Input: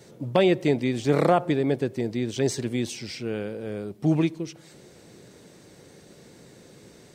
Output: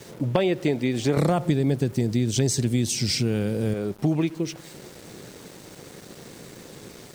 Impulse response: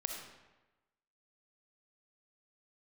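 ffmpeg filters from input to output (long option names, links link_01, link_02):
-filter_complex "[0:a]asettb=1/sr,asplit=3[link_01][link_02][link_03];[link_01]atrim=end=1.174[link_04];[link_02]atrim=start=1.17:end=3.74,asetpts=PTS-STARTPTS,afade=type=in:duration=0.004:curve=qsin,afade=type=out:start_time=2.566:duration=0.004:curve=qsin,bass=frequency=250:gain=12,treble=frequency=4000:gain=12[link_05];[link_03]atrim=start=3.736[link_06];[link_04][link_05]acrossfade=duration=0.004:curve1=hsin:curve2=qsin[link_07];[link_07][link_06]acrossfade=duration=0.004:curve1=qsin:curve2=hsin,acompressor=threshold=-28dB:ratio=4,aeval=exprs='val(0)*gte(abs(val(0)),0.00299)':channel_layout=same,volume=7.5dB"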